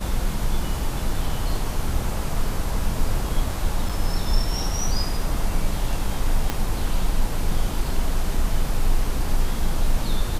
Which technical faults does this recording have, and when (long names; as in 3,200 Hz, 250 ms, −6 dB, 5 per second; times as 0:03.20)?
0:03.89–0:03.90: drop-out 5.2 ms
0:06.50: click −8 dBFS